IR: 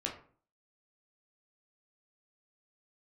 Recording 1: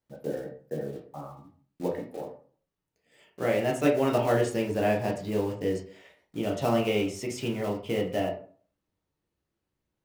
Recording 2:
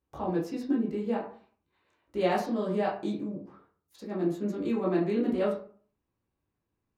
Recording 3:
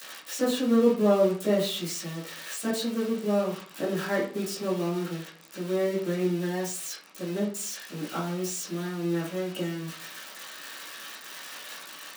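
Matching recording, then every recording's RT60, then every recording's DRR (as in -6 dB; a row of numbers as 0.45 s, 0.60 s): 1; 0.45 s, 0.45 s, 0.45 s; -1.0 dB, -5.5 dB, -14.0 dB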